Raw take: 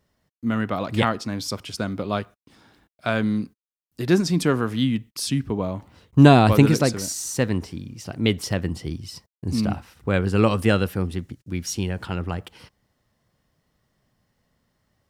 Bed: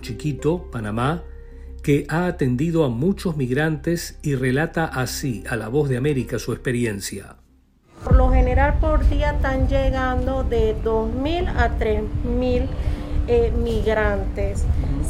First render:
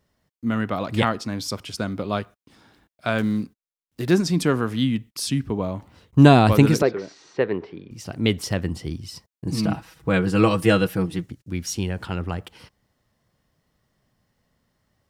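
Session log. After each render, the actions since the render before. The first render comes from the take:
0:03.18–0:04.11: gap after every zero crossing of 0.057 ms
0:06.82–0:07.91: loudspeaker in its box 220–3,200 Hz, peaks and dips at 240 Hz −8 dB, 410 Hz +10 dB, 2,900 Hz −4 dB
0:09.46–0:11.26: comb filter 6.2 ms, depth 79%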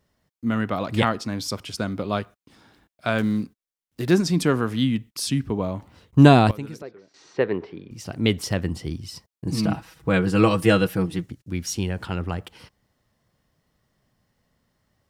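0:06.20–0:07.45: duck −18.5 dB, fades 0.31 s logarithmic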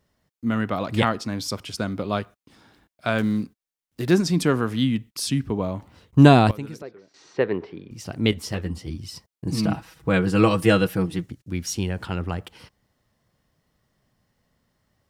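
0:08.31–0:08.98: string-ensemble chorus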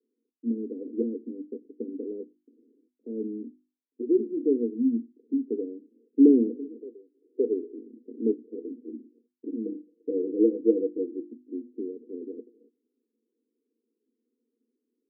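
Chebyshev band-pass filter 230–480 Hz, order 5
mains-hum notches 50/100/150/200/250/300/350 Hz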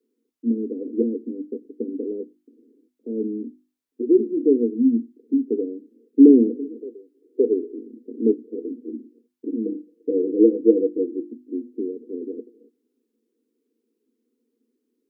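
level +6.5 dB
brickwall limiter −3 dBFS, peak gain reduction 1.5 dB

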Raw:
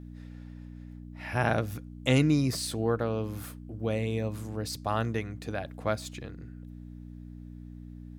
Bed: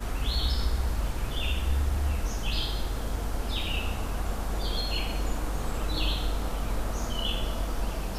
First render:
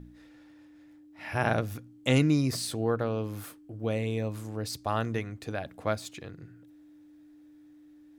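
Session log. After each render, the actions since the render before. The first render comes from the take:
hum removal 60 Hz, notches 4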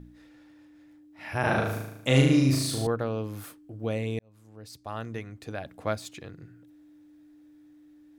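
0:01.40–0:02.87: flutter between parallel walls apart 6.4 metres, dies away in 0.84 s
0:04.19–0:05.84: fade in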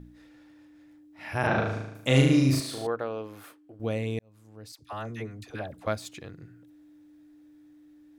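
0:01.47–0:01.95: Bessel low-pass filter 4,800 Hz, order 4
0:02.60–0:03.80: bass and treble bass −14 dB, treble −8 dB
0:04.72–0:05.87: all-pass dispersion lows, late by 71 ms, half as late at 920 Hz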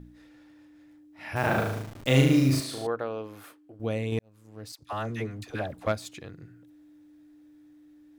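0:01.36–0:02.64: hold until the input has moved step −38.5 dBFS
0:04.12–0:05.92: leveller curve on the samples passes 1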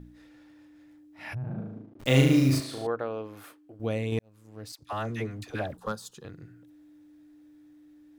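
0:01.33–0:01.99: resonant band-pass 110 Hz → 330 Hz, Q 2.8
0:02.58–0:03.37: high-shelf EQ 4,000 Hz −6.5 dB
0:05.77–0:06.25: phaser with its sweep stopped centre 440 Hz, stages 8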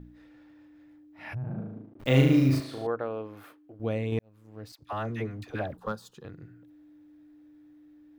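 parametric band 8,500 Hz −10.5 dB 1.9 octaves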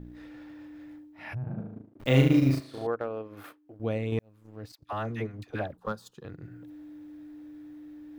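reversed playback
upward compression, threshold −37 dBFS
reversed playback
transient designer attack 0 dB, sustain −8 dB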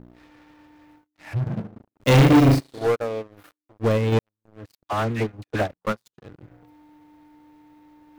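leveller curve on the samples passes 5
expander for the loud parts 2.5 to 1, over −24 dBFS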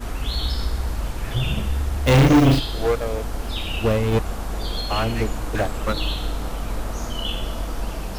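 mix in bed +3 dB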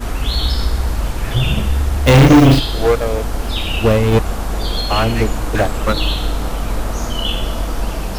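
level +7 dB
brickwall limiter −2 dBFS, peak gain reduction 2 dB

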